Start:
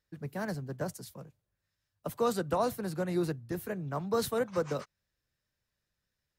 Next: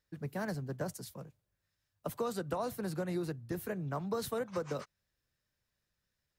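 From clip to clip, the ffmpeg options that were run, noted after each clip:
-af "acompressor=threshold=-32dB:ratio=6"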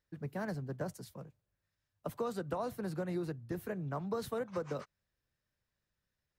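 -af "highshelf=f=3.7k:g=-7,volume=-1dB"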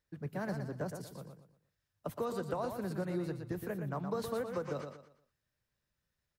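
-af "aecho=1:1:118|236|354|472:0.447|0.143|0.0457|0.0146"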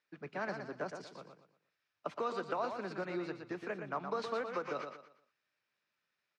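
-af "highpass=340,equalizer=f=510:t=q:w=4:g=-4,equalizer=f=1.3k:t=q:w=4:g=5,equalizer=f=2.4k:t=q:w=4:g=8,lowpass=f=5.7k:w=0.5412,lowpass=f=5.7k:w=1.3066,volume=2dB"

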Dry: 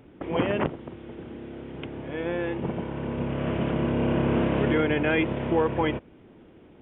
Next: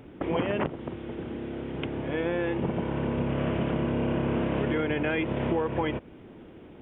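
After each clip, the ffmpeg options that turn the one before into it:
-af "acompressor=threshold=-28dB:ratio=6,volume=4dB"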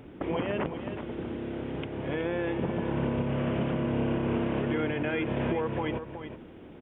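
-filter_complex "[0:a]alimiter=limit=-20dB:level=0:latency=1:release=264,asplit=2[a][b];[b]aecho=0:1:372:0.335[c];[a][c]amix=inputs=2:normalize=0"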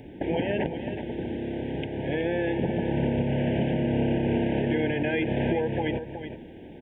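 -af "asuperstop=centerf=1200:order=20:qfactor=2,volume=3.5dB"

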